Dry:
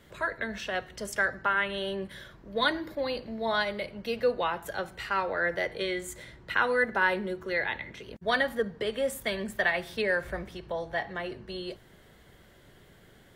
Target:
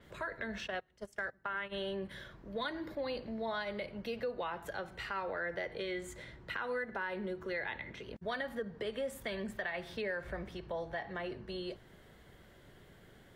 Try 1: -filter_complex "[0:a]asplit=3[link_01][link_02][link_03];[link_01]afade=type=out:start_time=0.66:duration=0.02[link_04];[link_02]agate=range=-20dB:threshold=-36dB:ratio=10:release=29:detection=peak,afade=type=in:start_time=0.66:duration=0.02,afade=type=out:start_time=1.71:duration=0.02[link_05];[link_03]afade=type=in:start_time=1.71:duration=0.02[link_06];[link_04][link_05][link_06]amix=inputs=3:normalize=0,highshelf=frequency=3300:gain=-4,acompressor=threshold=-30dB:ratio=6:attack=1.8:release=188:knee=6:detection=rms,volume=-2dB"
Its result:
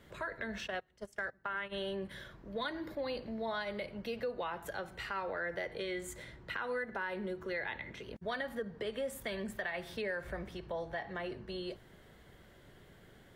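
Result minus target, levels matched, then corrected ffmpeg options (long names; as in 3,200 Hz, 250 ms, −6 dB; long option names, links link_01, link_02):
8,000 Hz band +3.5 dB
-filter_complex "[0:a]asplit=3[link_01][link_02][link_03];[link_01]afade=type=out:start_time=0.66:duration=0.02[link_04];[link_02]agate=range=-20dB:threshold=-36dB:ratio=10:release=29:detection=peak,afade=type=in:start_time=0.66:duration=0.02,afade=type=out:start_time=1.71:duration=0.02[link_05];[link_03]afade=type=in:start_time=1.71:duration=0.02[link_06];[link_04][link_05][link_06]amix=inputs=3:normalize=0,highshelf=frequency=3300:gain=-4,acompressor=threshold=-30dB:ratio=6:attack=1.8:release=188:knee=6:detection=rms,adynamicequalizer=threshold=0.001:dfrequency=7100:dqfactor=0.7:tfrequency=7100:tqfactor=0.7:attack=5:release=100:ratio=0.375:range=4:mode=cutabove:tftype=highshelf,volume=-2dB"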